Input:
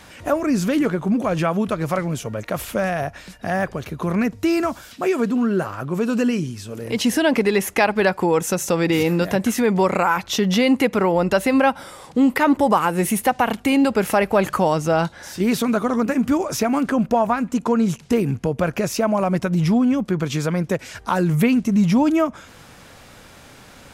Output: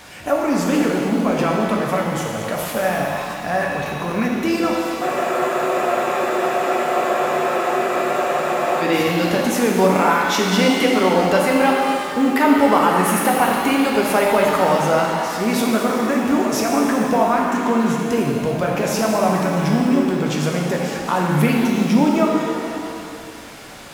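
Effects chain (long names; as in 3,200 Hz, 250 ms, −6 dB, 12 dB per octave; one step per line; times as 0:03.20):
mu-law and A-law mismatch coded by mu
low-shelf EQ 190 Hz −6.5 dB
on a send: echo through a band-pass that steps 259 ms, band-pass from 2,500 Hz, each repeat −1.4 octaves, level −11.5 dB
on the sum: frozen spectrum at 0:05.03, 3.79 s
reverb with rising layers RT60 2.1 s, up +7 semitones, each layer −8 dB, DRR −1 dB
level −1 dB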